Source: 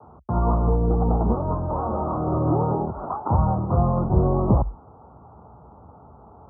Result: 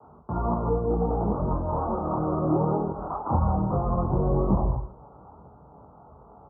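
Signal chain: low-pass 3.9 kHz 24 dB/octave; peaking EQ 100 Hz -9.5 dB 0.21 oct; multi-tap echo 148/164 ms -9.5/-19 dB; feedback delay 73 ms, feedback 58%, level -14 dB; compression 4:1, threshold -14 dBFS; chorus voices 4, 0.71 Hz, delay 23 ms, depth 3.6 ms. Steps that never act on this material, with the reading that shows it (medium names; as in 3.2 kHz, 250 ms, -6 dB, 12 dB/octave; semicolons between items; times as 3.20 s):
low-pass 3.9 kHz: input has nothing above 1.3 kHz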